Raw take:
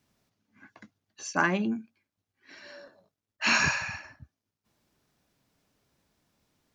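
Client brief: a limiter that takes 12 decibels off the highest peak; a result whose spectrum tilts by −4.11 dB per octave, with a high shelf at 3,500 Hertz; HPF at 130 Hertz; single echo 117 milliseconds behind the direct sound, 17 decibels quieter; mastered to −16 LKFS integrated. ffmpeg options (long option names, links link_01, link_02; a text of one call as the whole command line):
ffmpeg -i in.wav -af "highpass=130,highshelf=frequency=3500:gain=-7.5,alimiter=limit=-22dB:level=0:latency=1,aecho=1:1:117:0.141,volume=17dB" out.wav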